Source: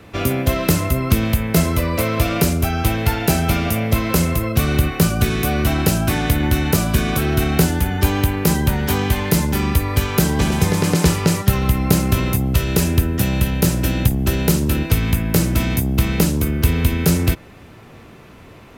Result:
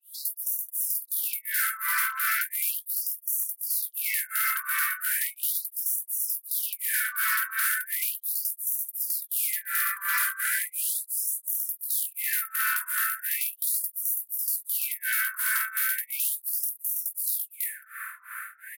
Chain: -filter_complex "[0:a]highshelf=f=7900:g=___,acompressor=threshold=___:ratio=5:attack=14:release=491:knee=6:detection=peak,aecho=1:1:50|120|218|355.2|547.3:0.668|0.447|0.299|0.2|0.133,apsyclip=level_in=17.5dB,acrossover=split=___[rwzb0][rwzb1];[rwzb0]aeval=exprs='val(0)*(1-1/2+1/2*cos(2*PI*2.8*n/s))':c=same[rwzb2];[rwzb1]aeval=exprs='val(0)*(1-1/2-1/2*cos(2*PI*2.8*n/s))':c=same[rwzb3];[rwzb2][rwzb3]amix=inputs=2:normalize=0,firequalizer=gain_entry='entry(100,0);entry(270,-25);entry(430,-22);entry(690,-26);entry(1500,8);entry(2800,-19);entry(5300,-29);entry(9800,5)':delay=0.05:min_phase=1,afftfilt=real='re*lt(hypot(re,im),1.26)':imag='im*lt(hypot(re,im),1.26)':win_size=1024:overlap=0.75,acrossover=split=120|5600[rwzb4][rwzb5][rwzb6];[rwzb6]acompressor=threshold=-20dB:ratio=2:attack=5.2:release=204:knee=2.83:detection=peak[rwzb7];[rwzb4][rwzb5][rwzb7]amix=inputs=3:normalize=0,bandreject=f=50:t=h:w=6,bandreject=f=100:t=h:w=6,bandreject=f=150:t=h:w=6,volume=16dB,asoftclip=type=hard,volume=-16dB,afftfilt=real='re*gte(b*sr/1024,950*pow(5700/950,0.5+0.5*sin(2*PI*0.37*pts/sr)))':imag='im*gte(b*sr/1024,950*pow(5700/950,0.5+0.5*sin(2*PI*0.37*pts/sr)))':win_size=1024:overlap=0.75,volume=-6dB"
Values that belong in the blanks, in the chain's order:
5.5, -15dB, 810